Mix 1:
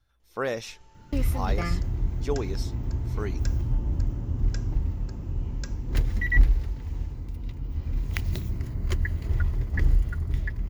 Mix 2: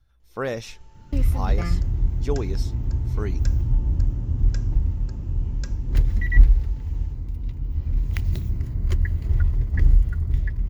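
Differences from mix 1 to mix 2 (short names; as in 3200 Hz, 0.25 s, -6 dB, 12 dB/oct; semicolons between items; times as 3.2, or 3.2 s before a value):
second sound -3.0 dB; master: add low shelf 190 Hz +9 dB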